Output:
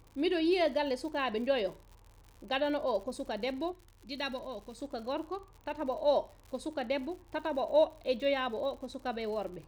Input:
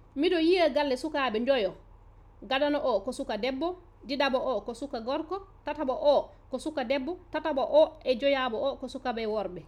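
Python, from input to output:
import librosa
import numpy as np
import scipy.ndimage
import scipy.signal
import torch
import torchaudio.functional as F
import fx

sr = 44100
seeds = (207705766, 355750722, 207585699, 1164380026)

y = fx.peak_eq(x, sr, hz=650.0, db=-8.5, octaves=2.6, at=(3.72, 4.79))
y = fx.dmg_crackle(y, sr, seeds[0], per_s=110.0, level_db=-40.0)
y = y * librosa.db_to_amplitude(-4.5)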